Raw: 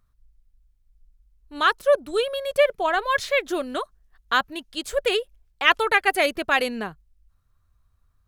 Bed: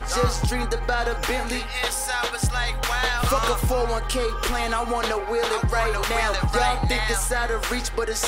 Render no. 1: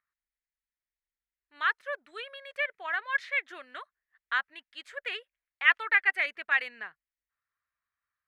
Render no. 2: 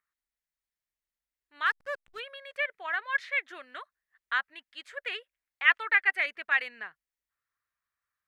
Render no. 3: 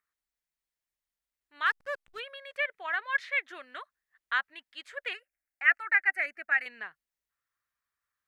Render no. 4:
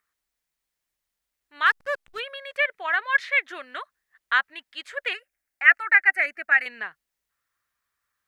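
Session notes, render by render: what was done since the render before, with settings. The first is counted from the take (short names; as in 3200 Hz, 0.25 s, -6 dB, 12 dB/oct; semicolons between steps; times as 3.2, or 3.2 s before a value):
band-pass 1900 Hz, Q 3.6
1.66–2.2 backlash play -44 dBFS
5.13–6.66 fixed phaser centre 690 Hz, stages 8
gain +7.5 dB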